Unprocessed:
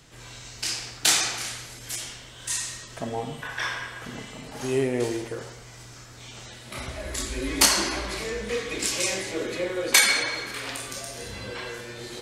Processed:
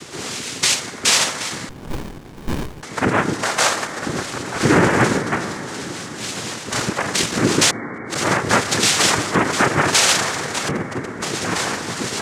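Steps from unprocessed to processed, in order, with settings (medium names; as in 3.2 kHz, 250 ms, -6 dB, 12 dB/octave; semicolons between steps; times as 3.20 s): 10.68–11.22 s: sorted samples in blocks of 256 samples; reverb removal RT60 1.7 s; in parallel at -2 dB: compression 8:1, threshold -41 dBFS, peak gain reduction 26.5 dB; 7.70–8.15 s: on the sum: inverted gate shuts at -23 dBFS, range -41 dB; valve stage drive 23 dB, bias 0.65; noise-vocoded speech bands 3; on a send at -9.5 dB: brick-wall FIR low-pass 2.3 kHz + reverberation RT60 5.1 s, pre-delay 63 ms; on the sum: loudness maximiser +19.5 dB; 1.69–2.83 s: sliding maximum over 65 samples; trim -3 dB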